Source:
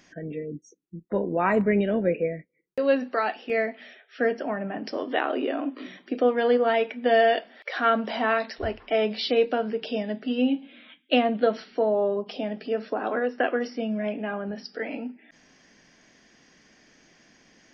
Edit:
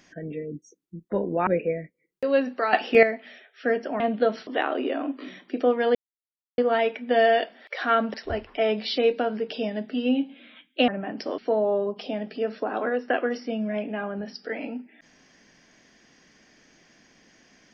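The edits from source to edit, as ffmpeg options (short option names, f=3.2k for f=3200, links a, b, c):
-filter_complex "[0:a]asplit=10[a][b][c][d][e][f][g][h][i][j];[a]atrim=end=1.472[k];[b]atrim=start=2.018:end=3.282[l];[c]atrim=start=3.278:end=3.582,asetpts=PTS-STARTPTS,volume=10.5dB[m];[d]atrim=start=3.578:end=4.552[n];[e]atrim=start=11.208:end=11.682[o];[f]atrim=start=5.048:end=6.53,asetpts=PTS-STARTPTS,afade=t=out:st=1.478:d=0.004:c=hsin,apad=pad_dur=0.63[p];[g]atrim=start=6.53:end=8.092,asetpts=PTS-STARTPTS,afade=t=in:d=0.004:c=hsin[q];[h]atrim=start=8.468:end=11.212[r];[i]atrim=start=4.548:end=5.052[s];[j]atrim=start=11.678[t];[k][l]acrossfade=d=0.004:c1=hsin:c2=hsin[u];[u][m]acrossfade=d=0.004:c1=hsin:c2=hsin[v];[v][n]acrossfade=d=0.004:c1=hsin:c2=hsin[w];[w][o]acrossfade=d=0.004:c1=hsin:c2=hsin[x];[p][q]concat=n=2:v=0:a=1[y];[x][y]acrossfade=d=0.004:c1=hsin:c2=hsin[z];[z][r]acrossfade=d=0.004:c1=hsin:c2=hsin[aa];[aa][s]acrossfade=d=0.004:c1=hsin:c2=hsin[ab];[ab][t]acrossfade=d=0.004:c1=hsin:c2=hsin"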